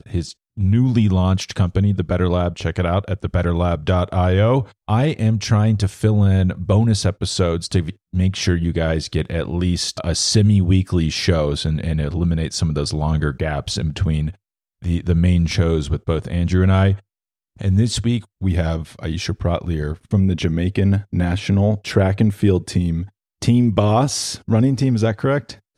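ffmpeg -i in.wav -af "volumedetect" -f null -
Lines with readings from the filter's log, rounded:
mean_volume: -18.2 dB
max_volume: -1.6 dB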